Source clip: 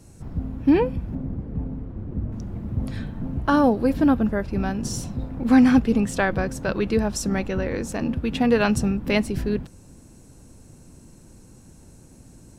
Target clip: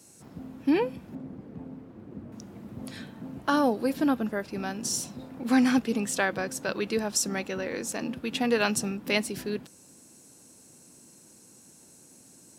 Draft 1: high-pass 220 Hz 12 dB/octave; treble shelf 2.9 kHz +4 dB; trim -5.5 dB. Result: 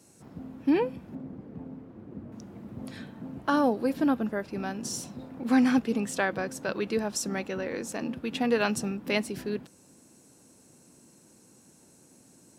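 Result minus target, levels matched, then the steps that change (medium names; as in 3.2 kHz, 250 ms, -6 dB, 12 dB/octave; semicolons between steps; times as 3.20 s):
8 kHz band -5.0 dB
change: treble shelf 2.9 kHz +10.5 dB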